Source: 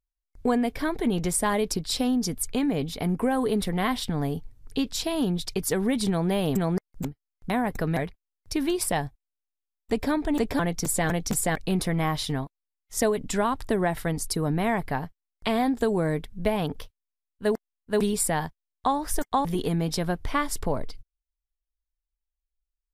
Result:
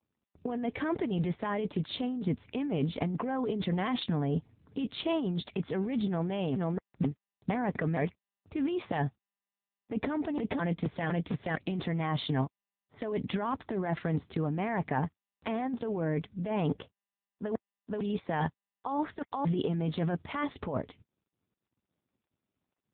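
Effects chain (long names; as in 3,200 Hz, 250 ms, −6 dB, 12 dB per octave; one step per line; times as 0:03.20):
low-pass that shuts in the quiet parts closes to 670 Hz, open at −21.5 dBFS
compressor whose output falls as the input rises −29 dBFS, ratio −1
AMR narrowband 6.7 kbit/s 8,000 Hz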